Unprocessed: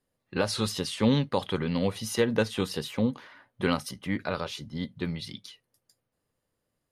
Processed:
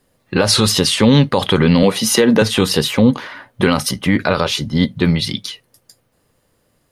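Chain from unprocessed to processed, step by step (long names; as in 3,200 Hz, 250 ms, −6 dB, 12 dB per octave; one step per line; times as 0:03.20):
0:01.83–0:02.42: high-pass filter 160 Hz 24 dB per octave
boost into a limiter +19.5 dB
level −1 dB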